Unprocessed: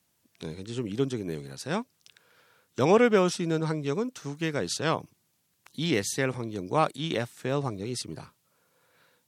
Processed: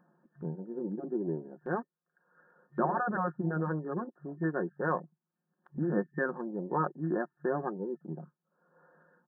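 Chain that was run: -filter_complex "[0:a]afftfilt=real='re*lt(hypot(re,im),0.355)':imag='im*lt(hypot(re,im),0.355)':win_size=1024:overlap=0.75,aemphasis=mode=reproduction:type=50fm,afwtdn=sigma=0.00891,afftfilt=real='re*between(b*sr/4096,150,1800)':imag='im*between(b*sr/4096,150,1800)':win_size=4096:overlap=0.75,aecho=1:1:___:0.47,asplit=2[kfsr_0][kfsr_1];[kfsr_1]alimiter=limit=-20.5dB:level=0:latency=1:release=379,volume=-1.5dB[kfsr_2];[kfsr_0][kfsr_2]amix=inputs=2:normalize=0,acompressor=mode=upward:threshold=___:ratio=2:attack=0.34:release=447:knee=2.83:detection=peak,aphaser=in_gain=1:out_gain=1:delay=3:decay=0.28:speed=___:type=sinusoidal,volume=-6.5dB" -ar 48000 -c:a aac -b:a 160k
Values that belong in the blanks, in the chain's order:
5.6, -31dB, 0.34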